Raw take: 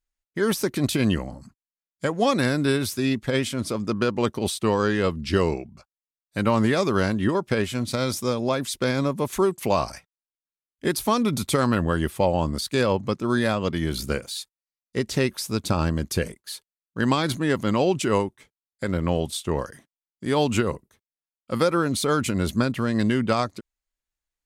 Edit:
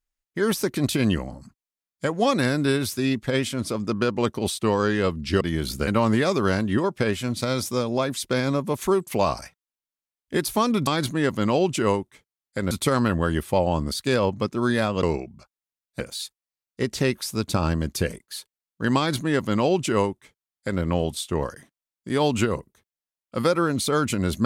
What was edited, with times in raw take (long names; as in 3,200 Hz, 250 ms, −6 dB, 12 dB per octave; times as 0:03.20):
0:05.41–0:06.38: swap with 0:13.70–0:14.16
0:17.13–0:18.97: duplicate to 0:11.38